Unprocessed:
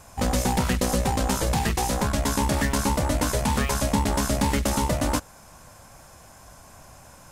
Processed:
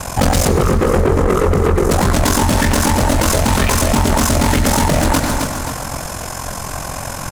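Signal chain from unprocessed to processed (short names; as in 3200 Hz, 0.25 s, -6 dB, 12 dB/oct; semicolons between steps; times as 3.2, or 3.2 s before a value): 0.48–1.91 EQ curve 300 Hz 0 dB, 430 Hz +15 dB, 820 Hz -23 dB, 1200 Hz +9 dB, 2000 Hz -28 dB, 6900 Hz -14 dB; soft clip -26 dBFS, distortion -8 dB; ring modulator 22 Hz; feedback echo 0.265 s, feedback 45%, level -12.5 dB; on a send at -10.5 dB: reverb RT60 1.0 s, pre-delay 93 ms; on the sum: maximiser +32 dB; gain -6.5 dB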